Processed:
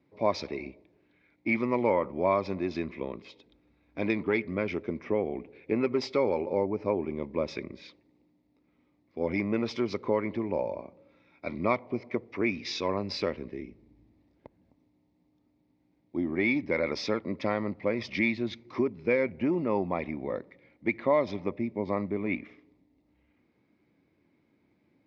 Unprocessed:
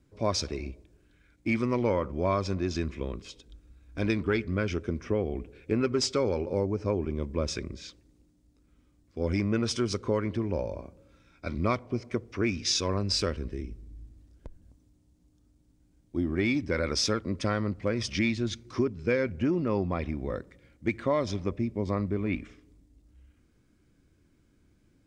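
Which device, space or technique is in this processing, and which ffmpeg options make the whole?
kitchen radio: -af "highpass=180,equalizer=f=610:t=q:w=4:g=3,equalizer=f=870:t=q:w=4:g=7,equalizer=f=1.5k:t=q:w=4:g=-9,equalizer=f=2.1k:t=q:w=4:g=7,equalizer=f=3.1k:t=q:w=4:g=-6,lowpass=f=4k:w=0.5412,lowpass=f=4k:w=1.3066"

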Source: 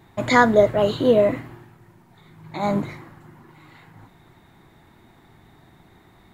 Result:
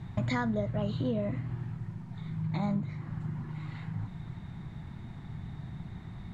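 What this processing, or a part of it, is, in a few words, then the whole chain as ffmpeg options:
jukebox: -af "lowpass=6.5k,lowshelf=f=240:t=q:w=1.5:g=12,acompressor=threshold=-30dB:ratio=5"

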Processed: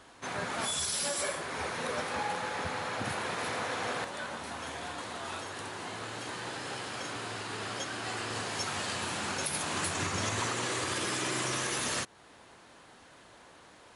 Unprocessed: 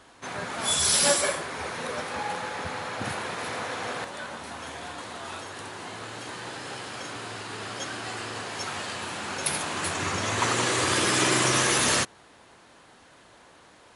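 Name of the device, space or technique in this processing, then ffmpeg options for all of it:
stacked limiters: -filter_complex "[0:a]alimiter=limit=-15.5dB:level=0:latency=1:release=106,alimiter=limit=-21.5dB:level=0:latency=1:release=292,asettb=1/sr,asplit=3[a][b][c];[a]atrim=end=8.304[d];[b]atrim=start=8.3:end=10.48,asetpts=PTS-STARTPTS,afade=t=in:d=0.004:c=qsin,afade=t=out:st=2.176:d=0.004:c=qsin,bass=f=250:g=3,treble=f=4k:g=3[e];[c]atrim=start=10.476[f];[d][e]acrossfade=d=0.004:c1=hsin:c2=qsin[g];[g][f]acrossfade=d=0.004:c1=qsin:c2=hsin,volume=-1.5dB"

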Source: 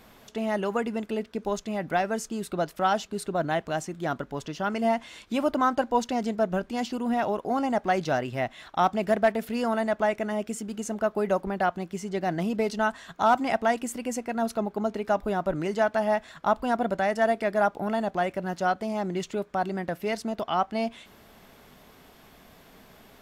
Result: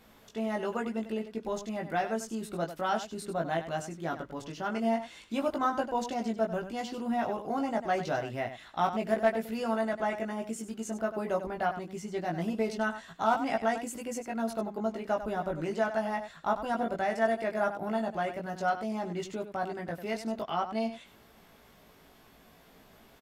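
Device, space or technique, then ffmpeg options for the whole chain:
slapback doubling: -filter_complex "[0:a]asplit=3[a][b][c];[b]adelay=18,volume=-3dB[d];[c]adelay=97,volume=-10dB[e];[a][d][e]amix=inputs=3:normalize=0,volume=-7dB"

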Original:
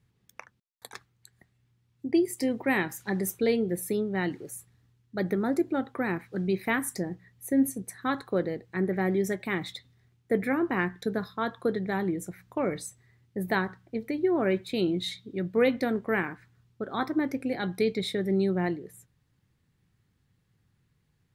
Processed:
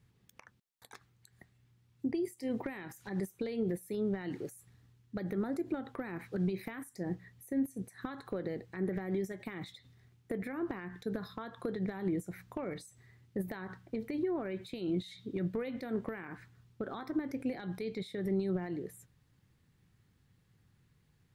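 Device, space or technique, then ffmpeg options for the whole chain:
de-esser from a sidechain: -filter_complex "[0:a]asplit=2[a][b];[b]highpass=f=4.9k:p=1,apad=whole_len=941401[c];[a][c]sidechaincompress=threshold=-51dB:ratio=10:attack=0.76:release=85,volume=1.5dB"

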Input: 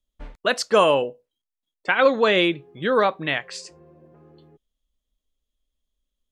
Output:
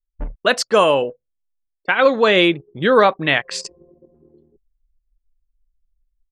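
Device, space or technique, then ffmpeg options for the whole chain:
voice memo with heavy noise removal: -af "anlmdn=0.631,dynaudnorm=f=120:g=3:m=15dB,volume=-1dB"

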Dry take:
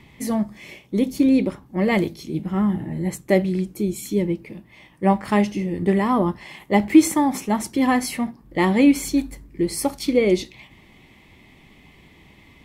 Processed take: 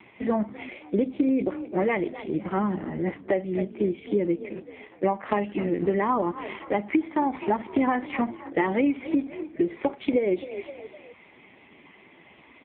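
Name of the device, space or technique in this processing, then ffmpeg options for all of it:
voicemail: -filter_complex "[0:a]asettb=1/sr,asplit=3[a][b][c];[a]atrim=end=1.794[d];[b]atrim=start=1.79:end=3.61,asetpts=PTS-STARTPTS,afade=t=in:d=0.004:c=qsin,afade=t=out:st=1.816:d=0.004:c=qsin,equalizer=f=260:t=o:w=1.2:g=-3[e];[c]atrim=start=3.606[f];[d][e]acrossfade=d=0.004:c1=hsin:c2=qsin[g];[g][f]acrossfade=d=0.004:c1=qsin:c2=hsin,asplit=4[h][i][j][k];[i]adelay=257,afreqshift=40,volume=-20.5dB[l];[j]adelay=514,afreqshift=80,volume=-28dB[m];[k]adelay=771,afreqshift=120,volume=-35.6dB[n];[h][l][m][n]amix=inputs=4:normalize=0,highpass=330,lowpass=2.7k,acompressor=threshold=-26dB:ratio=12,volume=7dB" -ar 8000 -c:a libopencore_amrnb -b:a 5150

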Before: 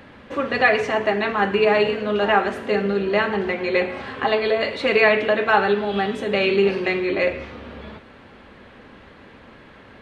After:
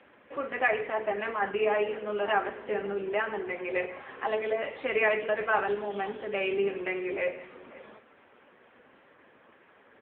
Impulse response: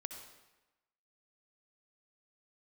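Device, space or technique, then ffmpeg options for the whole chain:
satellite phone: -af "highpass=330,lowpass=3.1k,aecho=1:1:537:0.0944,volume=-7.5dB" -ar 8000 -c:a libopencore_amrnb -b:a 6700

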